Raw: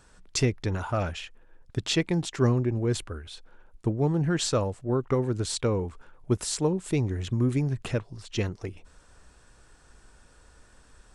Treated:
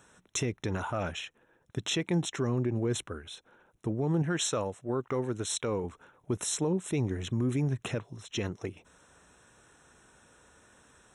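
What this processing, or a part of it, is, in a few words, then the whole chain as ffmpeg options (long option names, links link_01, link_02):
PA system with an anti-feedback notch: -filter_complex "[0:a]asettb=1/sr,asplit=3[link_01][link_02][link_03];[link_01]atrim=end=4.224[link_04];[link_02]atrim=start=4.22:end=5.84,asetpts=PTS-STARTPTS,afade=type=in:duration=0.004:curve=qsin,afade=type=out:start_time=1.616:duration=0.004:curve=qsin,lowshelf=frequency=490:gain=-5.5[link_05];[link_03]atrim=start=5.836[link_06];[link_04][link_05]acrossfade=duration=0.004:curve1=hsin:curve2=qsin[link_07];[link_07][link_06]acrossfade=duration=0.004:curve1=qsin:curve2=hsin,highpass=120,asuperstop=centerf=4700:order=20:qfactor=4.2,alimiter=limit=-20.5dB:level=0:latency=1:release=42"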